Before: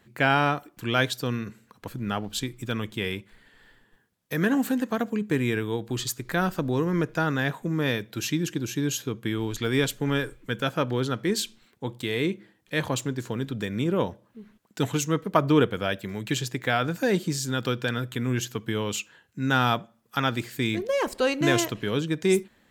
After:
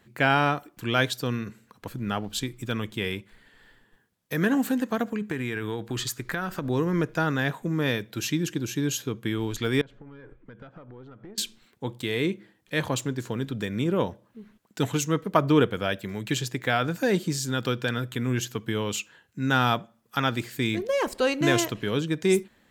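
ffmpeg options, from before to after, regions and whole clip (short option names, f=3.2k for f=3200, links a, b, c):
-filter_complex "[0:a]asettb=1/sr,asplit=3[a][b][c];[a]atrim=end=5.074[d];[b]atrim=start=5.07:end=6.7,asetpts=PTS-STARTPTS,afade=t=in:d=0.004:c=qsin,afade=t=out:st=1.626:d=0.004:c=qsin,equalizer=f=1.6k:w=1.1:g=5.5,acompressor=threshold=-25dB:ratio=6:attack=3.2:release=140:knee=1:detection=peak[e];[c]atrim=start=6.696[f];[d][e]acrossfade=d=0.004:c1=hsin:c2=qsin[g];[g][f]acrossfade=d=0.004:c1=qsin:c2=hsin,asettb=1/sr,asplit=3[h][i][j];[h]atrim=end=9.814[k];[i]atrim=start=9.81:end=11.38,asetpts=PTS-STARTPTS,afade=t=in:d=0.004:c=qsin,afade=t=out:st=1.566:d=0.004:c=qsin,lowpass=1.6k,acompressor=threshold=-37dB:ratio=8:attack=3.2:release=140:knee=1:detection=peak,aeval=exprs='(tanh(31.6*val(0)+0.65)-tanh(0.65))/31.6':c=same[l];[j]atrim=start=11.376[m];[k][l]acrossfade=d=0.004:c1=hsin:c2=qsin[n];[n][m]acrossfade=d=0.004:c1=qsin:c2=hsin"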